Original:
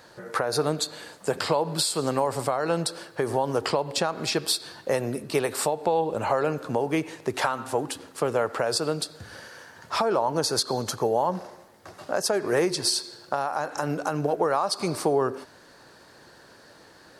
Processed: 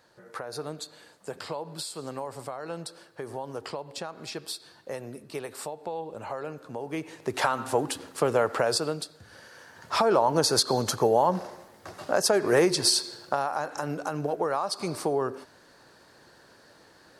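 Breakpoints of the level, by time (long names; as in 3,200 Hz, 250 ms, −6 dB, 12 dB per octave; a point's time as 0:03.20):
0:06.74 −11 dB
0:07.52 +1 dB
0:08.67 +1 dB
0:09.21 −9 dB
0:10.09 +2 dB
0:13.10 +2 dB
0:13.86 −4 dB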